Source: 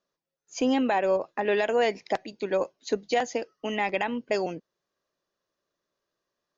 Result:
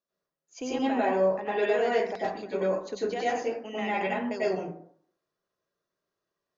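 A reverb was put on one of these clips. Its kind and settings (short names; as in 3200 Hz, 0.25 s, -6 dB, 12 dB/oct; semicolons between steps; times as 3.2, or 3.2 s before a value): plate-style reverb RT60 0.6 s, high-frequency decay 0.4×, pre-delay 85 ms, DRR -8 dB; gain -10.5 dB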